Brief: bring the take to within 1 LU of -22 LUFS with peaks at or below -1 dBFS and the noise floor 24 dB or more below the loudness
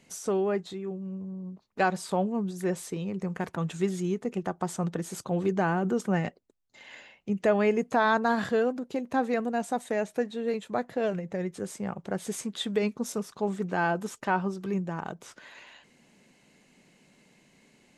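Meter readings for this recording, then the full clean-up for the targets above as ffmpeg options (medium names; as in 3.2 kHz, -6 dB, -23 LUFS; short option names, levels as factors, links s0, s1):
loudness -30.0 LUFS; peak level -11.5 dBFS; loudness target -22.0 LUFS
-> -af "volume=2.51"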